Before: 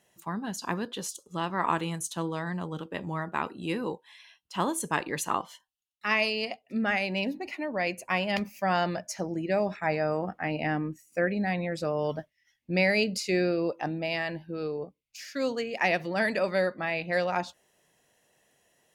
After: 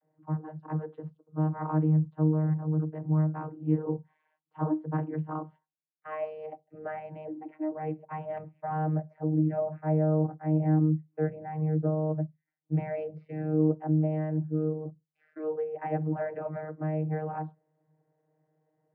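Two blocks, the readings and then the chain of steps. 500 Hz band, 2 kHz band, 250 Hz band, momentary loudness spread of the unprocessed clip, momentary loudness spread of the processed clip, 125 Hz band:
-3.5 dB, -19.5 dB, +2.5 dB, 9 LU, 13 LU, +9.5 dB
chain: Bessel low-pass 1000 Hz, order 4; vocoder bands 32, saw 155 Hz; gain +3 dB

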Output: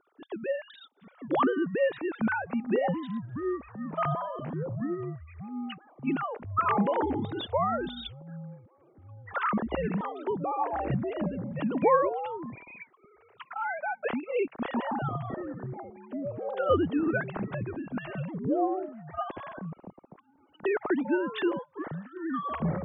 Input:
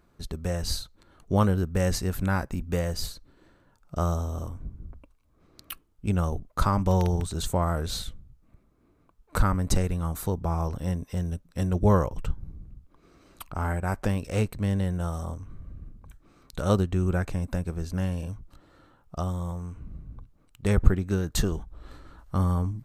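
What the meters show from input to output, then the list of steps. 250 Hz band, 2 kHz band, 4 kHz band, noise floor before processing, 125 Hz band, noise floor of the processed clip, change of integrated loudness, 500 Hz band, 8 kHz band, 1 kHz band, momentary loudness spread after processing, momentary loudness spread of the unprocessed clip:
-0.5 dB, +3.5 dB, -6.0 dB, -64 dBFS, -10.5 dB, -64 dBFS, -2.5 dB, +2.0 dB, under -40 dB, +3.5 dB, 14 LU, 18 LU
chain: sine-wave speech; echoes that change speed 0.737 s, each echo -7 st, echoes 3, each echo -6 dB; gain -4.5 dB

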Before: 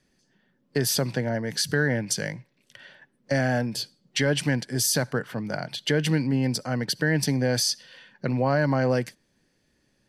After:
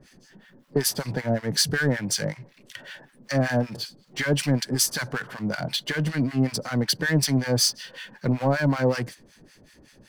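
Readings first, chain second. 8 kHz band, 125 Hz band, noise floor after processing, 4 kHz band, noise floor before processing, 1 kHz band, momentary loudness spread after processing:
+1.5 dB, +0.5 dB, -57 dBFS, +2.0 dB, -70 dBFS, -0.5 dB, 15 LU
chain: power-law curve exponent 0.7; harmonic tremolo 5.3 Hz, depth 100%, crossover 1000 Hz; gain +2 dB

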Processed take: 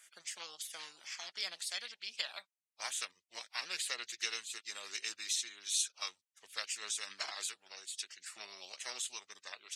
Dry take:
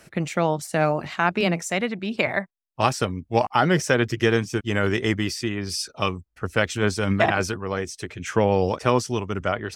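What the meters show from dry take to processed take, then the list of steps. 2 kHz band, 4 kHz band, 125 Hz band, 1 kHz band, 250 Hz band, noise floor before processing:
-18.0 dB, -7.0 dB, under -40 dB, -26.0 dB, under -40 dB, -68 dBFS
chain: ladder band-pass 4400 Hz, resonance 60%; spectral gate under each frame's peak -15 dB weak; gain +16.5 dB

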